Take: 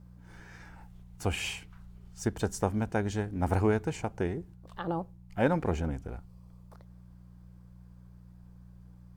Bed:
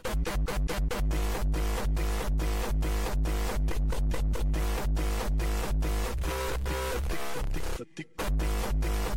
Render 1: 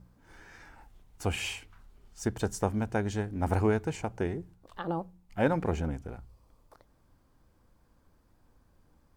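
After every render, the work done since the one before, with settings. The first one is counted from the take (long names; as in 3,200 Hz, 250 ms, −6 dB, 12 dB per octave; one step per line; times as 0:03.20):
hum removal 60 Hz, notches 3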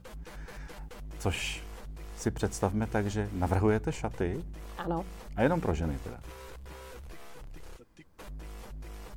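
mix in bed −15 dB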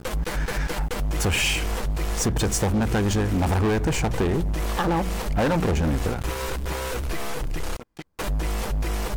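leveller curve on the samples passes 5
downward compressor, threshold −20 dBFS, peak gain reduction 5.5 dB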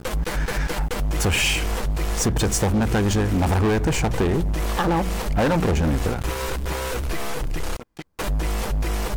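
level +2 dB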